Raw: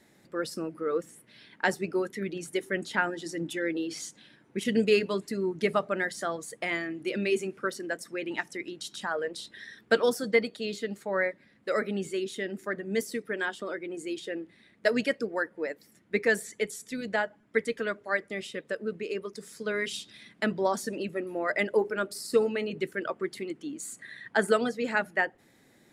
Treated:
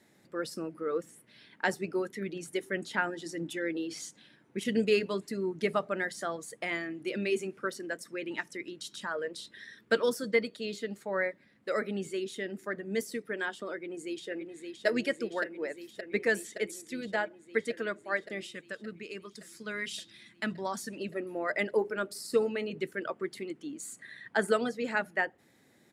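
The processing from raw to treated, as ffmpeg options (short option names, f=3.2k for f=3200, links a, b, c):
-filter_complex "[0:a]asettb=1/sr,asplit=3[a][b][c];[a]atrim=end=7.904[d];[b]atrim=start=7.9:end=10.65,asetpts=PTS-STARTPTS,afade=t=in:d=0.004:c=qsin,afade=t=out:st=2.746:d=0.004:c=qsin,bandreject=f=760:w=5[e];[c]atrim=start=10.646[f];[d][e]acrossfade=d=0.004:c1=hsin:c2=qsin[g];[g][f]acrossfade=d=0.004:c1=qsin:c2=hsin,asplit=2[h][i];[i]afade=t=in:st=13.74:d=0.01,afade=t=out:st=14.86:d=0.01,aecho=0:1:570|1140|1710|2280|2850|3420|3990|4560|5130|5700|6270|6840:0.530884|0.424708|0.339766|0.271813|0.21745|0.17396|0.139168|0.111335|0.0890676|0.0712541|0.0570033|0.0456026[j];[h][j]amix=inputs=2:normalize=0,asettb=1/sr,asplit=3[k][l][m];[k]atrim=end=18.464[n];[l]atrim=start=18.46:end=21.01,asetpts=PTS-STARTPTS,afade=t=in:d=0.004:c=qsin,afade=t=out:st=2.546:d=0.004:c=qsin,equalizer=f=480:w=1.1:g=-9[o];[m]atrim=start=21.006[p];[n][o]acrossfade=d=0.004:c1=hsin:c2=qsin[q];[q][p]acrossfade=d=0.004:c1=qsin:c2=hsin,highpass=60,volume=-3dB"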